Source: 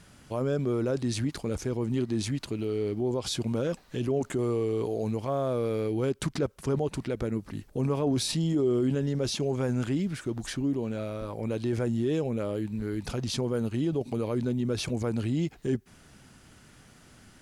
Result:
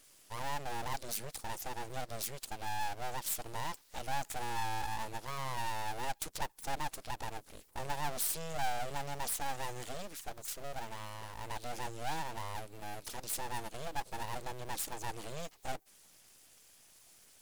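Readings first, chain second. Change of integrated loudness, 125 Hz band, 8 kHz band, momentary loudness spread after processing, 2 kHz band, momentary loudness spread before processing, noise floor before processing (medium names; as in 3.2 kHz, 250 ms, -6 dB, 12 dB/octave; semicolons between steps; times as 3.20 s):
-10.0 dB, -17.0 dB, 0.0 dB, 9 LU, +0.5 dB, 6 LU, -55 dBFS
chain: coarse spectral quantiser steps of 15 dB; peaking EQ 430 Hz +13.5 dB 0.8 oct; full-wave rectifier; pre-emphasis filter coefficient 0.9; trim +2.5 dB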